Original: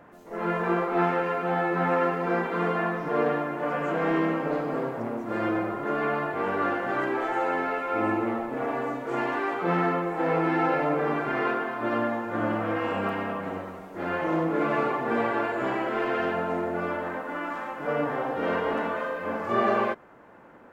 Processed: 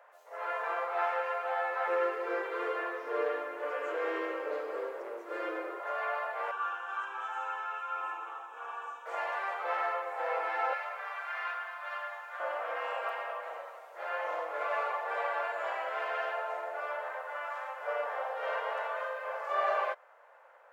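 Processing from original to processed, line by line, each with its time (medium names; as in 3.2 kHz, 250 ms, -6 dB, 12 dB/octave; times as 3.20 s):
1.87–5.80 s: resonant low shelf 500 Hz +11 dB, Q 3
6.51–9.06 s: static phaser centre 3 kHz, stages 8
10.73–12.40 s: high-pass 1.2 kHz
whole clip: elliptic high-pass 540 Hz, stop band 60 dB; trim -4.5 dB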